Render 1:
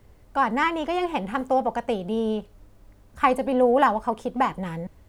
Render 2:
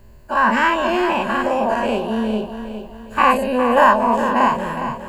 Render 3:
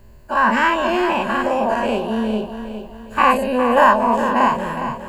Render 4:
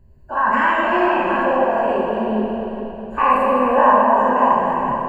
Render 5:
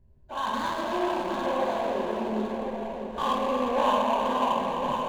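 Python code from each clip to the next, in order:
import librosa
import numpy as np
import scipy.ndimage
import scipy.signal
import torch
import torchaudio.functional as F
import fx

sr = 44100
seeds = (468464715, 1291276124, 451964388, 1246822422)

y1 = fx.spec_dilate(x, sr, span_ms=120)
y1 = fx.ripple_eq(y1, sr, per_octave=1.4, db=10)
y1 = fx.echo_feedback(y1, sr, ms=410, feedback_pct=42, wet_db=-9.5)
y2 = y1
y3 = fx.envelope_sharpen(y2, sr, power=1.5)
y3 = fx.rev_plate(y3, sr, seeds[0], rt60_s=3.3, hf_ratio=0.75, predelay_ms=0, drr_db=-3.0)
y3 = y3 * 10.0 ** (-4.0 / 20.0)
y4 = scipy.ndimage.median_filter(y3, 25, mode='constant')
y4 = y4 + 10.0 ** (-8.0 / 20.0) * np.pad(y4, (int(1058 * sr / 1000.0), 0))[:len(y4)]
y4 = y4 * 10.0 ** (-9.0 / 20.0)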